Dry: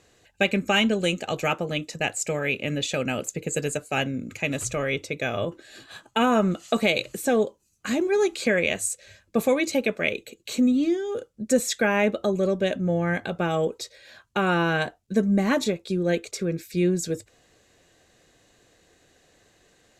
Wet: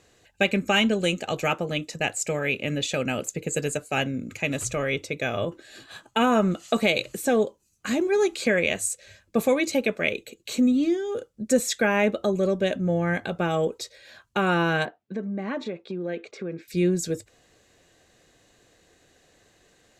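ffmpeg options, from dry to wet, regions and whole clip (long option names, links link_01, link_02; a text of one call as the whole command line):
ffmpeg -i in.wav -filter_complex "[0:a]asettb=1/sr,asplit=3[link_01][link_02][link_03];[link_01]atrim=end=14.854[link_04];[link_02]atrim=start=14.85:end=16.68,asetpts=PTS-STARTPTS,afade=type=in:duration=0.004:curve=qsin,afade=type=out:start_time=1.826:duration=0.004:curve=qsin,acompressor=threshold=-27dB:ratio=3:attack=3.2:release=140:knee=1:detection=peak,highpass=200,lowpass=2600[link_05];[link_03]atrim=start=16.676[link_06];[link_04][link_05]acrossfade=duration=0.004:curve1=hsin:curve2=qsin[link_07];[link_07][link_06]acrossfade=duration=0.004:curve1=qsin:curve2=hsin" out.wav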